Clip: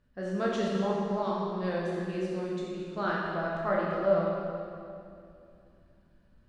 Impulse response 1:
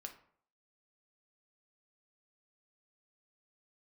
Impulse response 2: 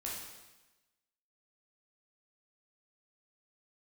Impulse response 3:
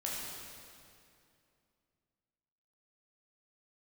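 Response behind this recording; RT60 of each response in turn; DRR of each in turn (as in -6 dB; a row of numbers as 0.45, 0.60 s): 3; 0.60, 1.1, 2.5 s; 3.5, -5.0, -5.0 dB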